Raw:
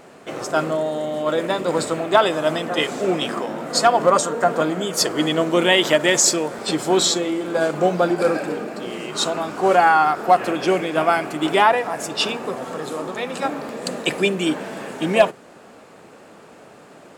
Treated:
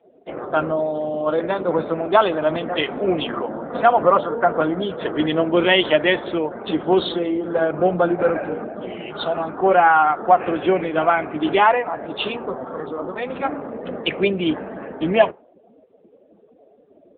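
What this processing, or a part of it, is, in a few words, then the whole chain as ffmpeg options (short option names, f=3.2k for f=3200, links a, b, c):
mobile call with aggressive noise cancelling: -filter_complex "[0:a]asettb=1/sr,asplit=3[a][b][c];[a]atrim=end=8.134[d];[b]atrim=start=8.13:end=9.36,asetpts=PTS-STARTPTS,afade=t=in:d=0.004:c=qsin,afade=t=out:st=1.226:d=0.004:c=qsin,aecho=1:1:1.4:0.31,atrim=end_sample=54243[e];[c]atrim=start=9.356[f];[d][e]acrossfade=d=0.004:c1=hsin:c2=qsin[g];[g][f]acrossfade=d=0.004:c1=qsin:c2=hsin,asplit=3[h][i][j];[h]afade=t=out:st=12.71:d=0.02[k];[i]lowpass=7.7k,afade=t=in:st=12.71:d=0.02,afade=t=out:st=13.26:d=0.02[l];[j]afade=t=in:st=13.26:d=0.02[m];[k][l][m]amix=inputs=3:normalize=0,highpass=120,afftdn=nr=26:nf=-35,volume=1dB" -ar 8000 -c:a libopencore_amrnb -b:a 7950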